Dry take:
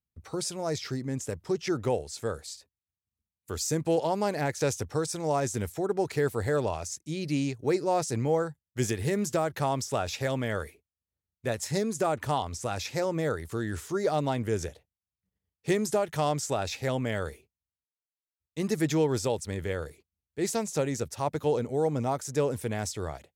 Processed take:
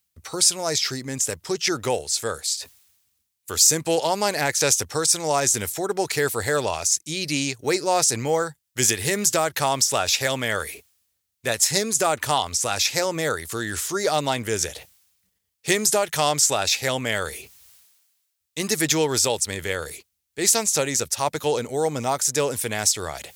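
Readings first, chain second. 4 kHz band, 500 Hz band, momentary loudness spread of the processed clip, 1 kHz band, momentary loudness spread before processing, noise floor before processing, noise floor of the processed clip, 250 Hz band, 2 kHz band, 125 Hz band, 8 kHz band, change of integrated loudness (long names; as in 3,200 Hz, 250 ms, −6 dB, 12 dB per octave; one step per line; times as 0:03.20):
+15.5 dB, +3.5 dB, 9 LU, +6.5 dB, 8 LU, below −85 dBFS, −77 dBFS, +1.0 dB, +11.0 dB, −0.5 dB, +17.0 dB, +8.0 dB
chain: high-shelf EQ 2,300 Hz +11 dB
reversed playback
upward compression, threshold −36 dBFS
reversed playback
low-shelf EQ 440 Hz −8.5 dB
level +7 dB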